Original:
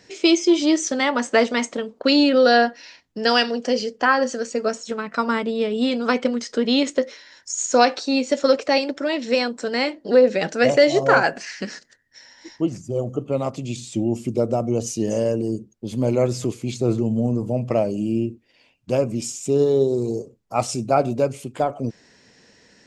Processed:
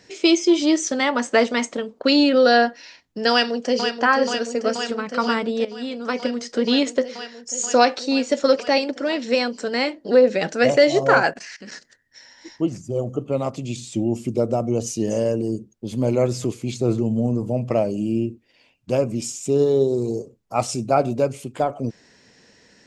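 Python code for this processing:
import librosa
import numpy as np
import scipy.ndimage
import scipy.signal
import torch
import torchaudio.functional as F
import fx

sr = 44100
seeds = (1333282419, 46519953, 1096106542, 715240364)

y = fx.echo_throw(x, sr, start_s=3.31, length_s=0.66, ms=480, feedback_pct=85, wet_db=-7.0)
y = fx.level_steps(y, sr, step_db=19, at=(11.31, 11.72))
y = fx.edit(y, sr, fx.fade_in_from(start_s=5.65, length_s=0.98, floor_db=-13.5), tone=tone)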